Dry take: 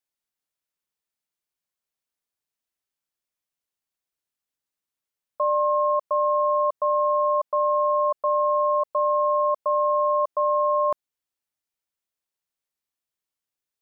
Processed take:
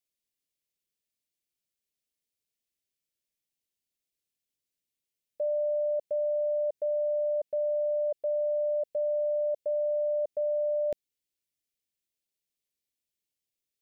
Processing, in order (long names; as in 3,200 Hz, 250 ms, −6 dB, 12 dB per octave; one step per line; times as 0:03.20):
Butterworth band-reject 1,100 Hz, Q 0.71